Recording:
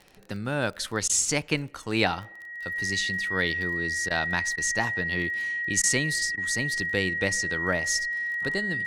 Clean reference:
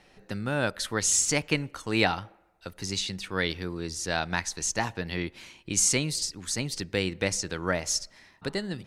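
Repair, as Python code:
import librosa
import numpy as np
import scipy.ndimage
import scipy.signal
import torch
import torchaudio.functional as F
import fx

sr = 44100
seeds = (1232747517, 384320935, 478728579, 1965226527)

y = fx.fix_declick_ar(x, sr, threshold=6.5)
y = fx.notch(y, sr, hz=1900.0, q=30.0)
y = fx.fix_interpolate(y, sr, at_s=(1.08, 4.09, 4.56, 5.82, 6.36), length_ms=14.0)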